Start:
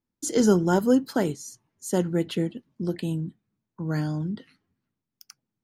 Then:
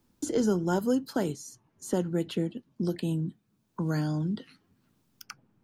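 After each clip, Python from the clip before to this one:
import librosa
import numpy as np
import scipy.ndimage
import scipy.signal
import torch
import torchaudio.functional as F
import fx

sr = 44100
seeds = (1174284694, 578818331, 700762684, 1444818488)

y = fx.peak_eq(x, sr, hz=2000.0, db=-4.5, octaves=0.37)
y = fx.band_squash(y, sr, depth_pct=70)
y = y * librosa.db_to_amplitude(-4.0)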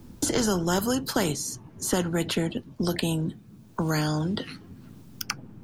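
y = fx.low_shelf(x, sr, hz=400.0, db=11.0)
y = fx.spectral_comp(y, sr, ratio=2.0)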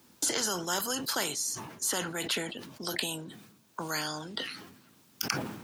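y = fx.highpass(x, sr, hz=1400.0, slope=6)
y = fx.sustainer(y, sr, db_per_s=61.0)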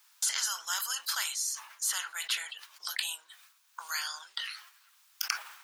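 y = scipy.signal.sosfilt(scipy.signal.butter(4, 1100.0, 'highpass', fs=sr, output='sos'), x)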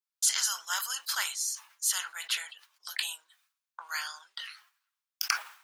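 y = fx.band_widen(x, sr, depth_pct=100)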